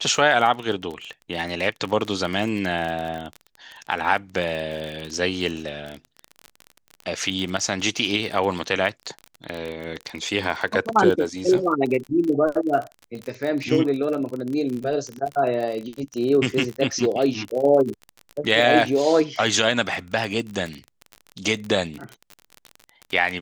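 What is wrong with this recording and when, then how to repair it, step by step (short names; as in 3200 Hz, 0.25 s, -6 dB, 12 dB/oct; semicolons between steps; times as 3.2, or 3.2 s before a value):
crackle 37/s -27 dBFS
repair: de-click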